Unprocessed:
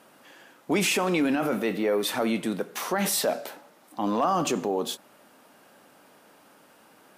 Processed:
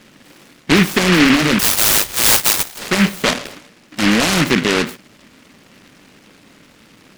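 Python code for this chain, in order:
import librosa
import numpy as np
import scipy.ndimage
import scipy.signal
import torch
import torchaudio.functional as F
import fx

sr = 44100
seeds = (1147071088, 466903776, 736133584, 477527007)

y = fx.tilt_eq(x, sr, slope=-4.5)
y = fx.freq_invert(y, sr, carrier_hz=3500, at=(1.59, 2.79))
y = fx.noise_mod_delay(y, sr, seeds[0], noise_hz=1900.0, depth_ms=0.33)
y = y * 10.0 ** (5.0 / 20.0)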